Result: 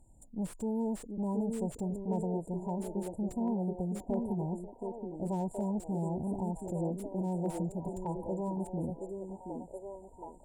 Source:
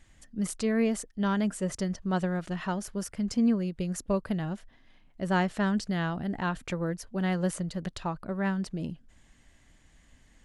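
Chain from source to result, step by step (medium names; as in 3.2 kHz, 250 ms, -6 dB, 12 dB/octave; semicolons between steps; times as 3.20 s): valve stage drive 30 dB, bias 0.3; 7.98–8.57 s: comb 2.1 ms, depth 49%; on a send: repeats whose band climbs or falls 723 ms, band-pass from 330 Hz, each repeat 0.7 oct, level -0.5 dB; on the sum: FFT band-reject 990–7000 Hz; slew-rate limiter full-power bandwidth 27 Hz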